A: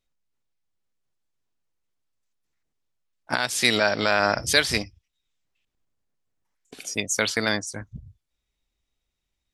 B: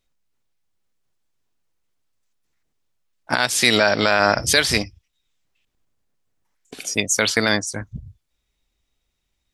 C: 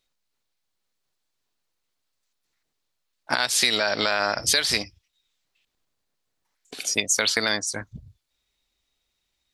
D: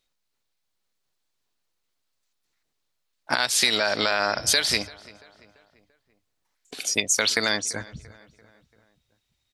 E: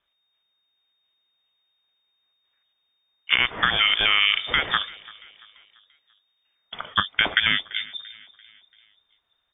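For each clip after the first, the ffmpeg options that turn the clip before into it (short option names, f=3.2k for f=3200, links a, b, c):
-af "alimiter=level_in=7dB:limit=-1dB:release=50:level=0:latency=1,volume=-1dB"
-af "equalizer=f=4.2k:t=o:w=0.53:g=5,acompressor=threshold=-17dB:ratio=6,lowshelf=f=280:g=-9"
-filter_complex "[0:a]asplit=2[a][b];[b]adelay=340,lowpass=f=2.7k:p=1,volume=-20dB,asplit=2[c][d];[d]adelay=340,lowpass=f=2.7k:p=1,volume=0.53,asplit=2[e][f];[f]adelay=340,lowpass=f=2.7k:p=1,volume=0.53,asplit=2[g][h];[h]adelay=340,lowpass=f=2.7k:p=1,volume=0.53[i];[a][c][e][g][i]amix=inputs=5:normalize=0"
-af "lowpass=f=3.1k:t=q:w=0.5098,lowpass=f=3.1k:t=q:w=0.6013,lowpass=f=3.1k:t=q:w=0.9,lowpass=f=3.1k:t=q:w=2.563,afreqshift=-3700,volume=4.5dB"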